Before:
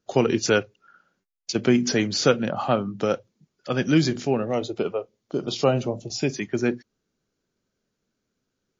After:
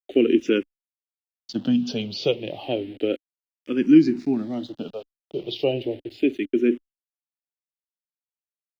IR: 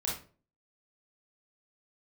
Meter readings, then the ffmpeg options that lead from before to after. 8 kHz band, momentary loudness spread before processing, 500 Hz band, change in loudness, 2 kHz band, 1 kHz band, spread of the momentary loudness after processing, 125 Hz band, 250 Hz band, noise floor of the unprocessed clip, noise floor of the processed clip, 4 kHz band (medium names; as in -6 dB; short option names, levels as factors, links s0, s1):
no reading, 10 LU, -1.0 dB, +0.5 dB, -6.0 dB, -12.0 dB, 17 LU, -8.0 dB, +3.5 dB, -80 dBFS, under -85 dBFS, -3.5 dB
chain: -filter_complex "[0:a]aeval=exprs='val(0)*gte(abs(val(0)),0.015)':c=same,firequalizer=gain_entry='entry(150,0);entry(290,15);entry(480,4);entry(1100,-8);entry(2900,10);entry(6600,-13)':delay=0.05:min_phase=1,asplit=2[s0][s1];[s1]afreqshift=-0.32[s2];[s0][s2]amix=inputs=2:normalize=1,volume=0.531"